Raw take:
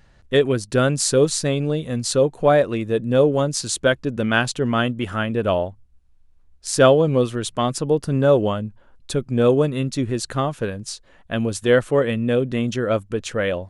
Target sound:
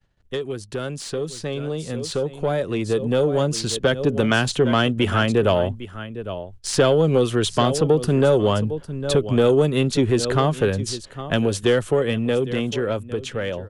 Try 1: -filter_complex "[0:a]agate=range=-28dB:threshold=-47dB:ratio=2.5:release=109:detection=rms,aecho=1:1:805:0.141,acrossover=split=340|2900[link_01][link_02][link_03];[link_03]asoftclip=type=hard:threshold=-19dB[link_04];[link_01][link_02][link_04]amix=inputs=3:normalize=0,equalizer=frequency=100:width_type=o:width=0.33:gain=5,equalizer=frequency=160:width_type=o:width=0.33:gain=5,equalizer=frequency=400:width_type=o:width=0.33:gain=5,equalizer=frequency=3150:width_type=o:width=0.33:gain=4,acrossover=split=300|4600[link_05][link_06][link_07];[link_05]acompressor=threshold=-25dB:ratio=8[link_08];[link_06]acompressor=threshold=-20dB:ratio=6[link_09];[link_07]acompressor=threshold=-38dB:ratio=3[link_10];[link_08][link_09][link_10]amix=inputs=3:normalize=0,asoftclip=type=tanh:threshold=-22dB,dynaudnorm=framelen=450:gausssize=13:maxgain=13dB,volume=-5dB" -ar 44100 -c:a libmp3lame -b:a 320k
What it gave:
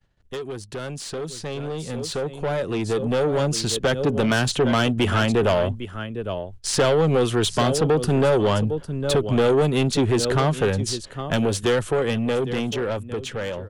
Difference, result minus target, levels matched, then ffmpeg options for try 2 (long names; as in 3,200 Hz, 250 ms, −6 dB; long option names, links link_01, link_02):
soft clipping: distortion +10 dB
-filter_complex "[0:a]agate=range=-28dB:threshold=-47dB:ratio=2.5:release=109:detection=rms,aecho=1:1:805:0.141,acrossover=split=340|2900[link_01][link_02][link_03];[link_03]asoftclip=type=hard:threshold=-19dB[link_04];[link_01][link_02][link_04]amix=inputs=3:normalize=0,equalizer=frequency=100:width_type=o:width=0.33:gain=5,equalizer=frequency=160:width_type=o:width=0.33:gain=5,equalizer=frequency=400:width_type=o:width=0.33:gain=5,equalizer=frequency=3150:width_type=o:width=0.33:gain=4,acrossover=split=300|4600[link_05][link_06][link_07];[link_05]acompressor=threshold=-25dB:ratio=8[link_08];[link_06]acompressor=threshold=-20dB:ratio=6[link_09];[link_07]acompressor=threshold=-38dB:ratio=3[link_10];[link_08][link_09][link_10]amix=inputs=3:normalize=0,asoftclip=type=tanh:threshold=-13dB,dynaudnorm=framelen=450:gausssize=13:maxgain=13dB,volume=-5dB" -ar 44100 -c:a libmp3lame -b:a 320k